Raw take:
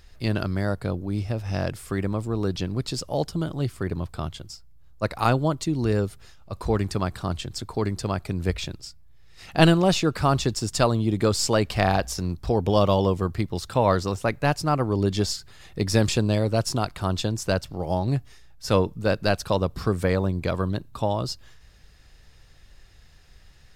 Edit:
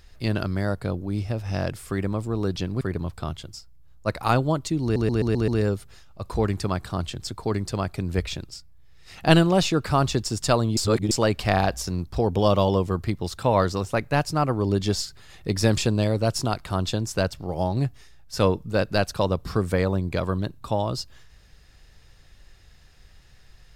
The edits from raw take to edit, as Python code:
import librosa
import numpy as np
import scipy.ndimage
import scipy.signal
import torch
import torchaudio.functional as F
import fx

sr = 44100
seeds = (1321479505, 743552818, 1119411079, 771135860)

y = fx.edit(x, sr, fx.cut(start_s=2.81, length_s=0.96),
    fx.stutter(start_s=5.79, slice_s=0.13, count=6),
    fx.reverse_span(start_s=11.08, length_s=0.34), tone=tone)